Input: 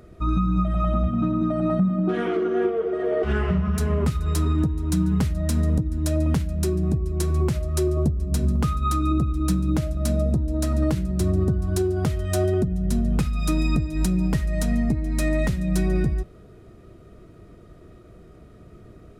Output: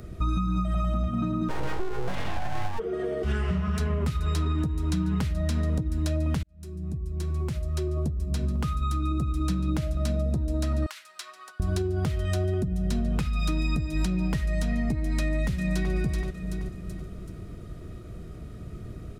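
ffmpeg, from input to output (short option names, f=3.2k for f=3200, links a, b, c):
-filter_complex "[0:a]asplit=3[a][b][c];[a]afade=t=out:st=1.48:d=0.02[d];[b]aeval=exprs='abs(val(0))':c=same,afade=t=in:st=1.48:d=0.02,afade=t=out:st=2.78:d=0.02[e];[c]afade=t=in:st=2.78:d=0.02[f];[d][e][f]amix=inputs=3:normalize=0,asettb=1/sr,asplit=3[g][h][i];[g]atrim=end=10.864[j];[h]atrim=start=10.86:end=11.6,asetpts=PTS-STARTPTS,afade=t=in:d=0.004:c=qsin,afade=t=out:st=0.736:d=0.004:c=qsin,highpass=f=1.1k:w=0.5412,highpass=f=1.1k:w=1.3066[k];[i]atrim=start=11.596[l];[j][k]acrossfade=d=0.004:c1=hsin:c2=qsin[m];[m][l]acrossfade=d=0.004:c1=qsin:c2=hsin,asplit=2[n][o];[o]afade=t=in:st=15.2:d=0.01,afade=t=out:st=15.92:d=0.01,aecho=0:1:380|760|1140|1520:0.354813|0.141925|0.0567701|0.0227081[p];[n][p]amix=inputs=2:normalize=0,asplit=2[q][r];[q]atrim=end=6.43,asetpts=PTS-STARTPTS,afade=t=out:st=6.426:d=0.004:c=hsin[s];[r]atrim=start=6.43,asetpts=PTS-STARTPTS,afade=t=in:d=3.32[t];[s][t]concat=n=2:v=0:a=1,highshelf=f=2.2k:g=8.5,acrossover=split=370|4700[u][v][w];[u]acompressor=threshold=-35dB:ratio=4[x];[v]acompressor=threshold=-35dB:ratio=4[y];[w]acompressor=threshold=-50dB:ratio=4[z];[x][y][z]amix=inputs=3:normalize=0,bass=f=250:g=9,treble=f=4k:g=-1"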